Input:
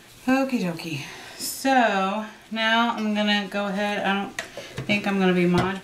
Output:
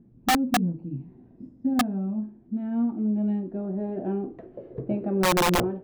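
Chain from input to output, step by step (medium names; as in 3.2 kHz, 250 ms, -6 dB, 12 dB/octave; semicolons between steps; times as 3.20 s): low-pass sweep 230 Hz -> 470 Hz, 1.75–5.07 s; integer overflow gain 12 dB; trim -4 dB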